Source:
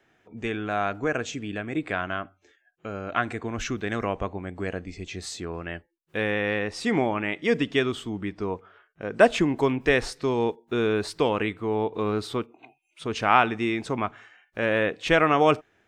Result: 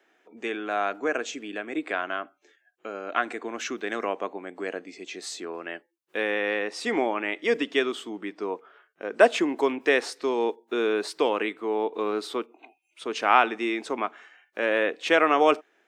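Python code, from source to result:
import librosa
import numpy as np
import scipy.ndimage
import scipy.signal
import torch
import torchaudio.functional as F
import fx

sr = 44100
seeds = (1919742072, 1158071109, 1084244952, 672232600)

y = scipy.signal.sosfilt(scipy.signal.butter(4, 280.0, 'highpass', fs=sr, output='sos'), x)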